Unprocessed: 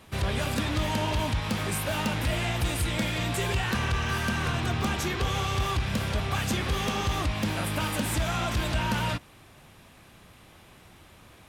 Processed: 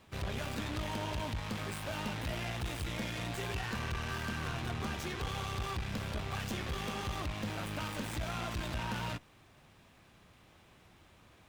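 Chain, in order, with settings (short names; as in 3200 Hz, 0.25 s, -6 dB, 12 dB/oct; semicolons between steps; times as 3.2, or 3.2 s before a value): tube stage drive 25 dB, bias 0.55; running maximum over 3 samples; gain -5.5 dB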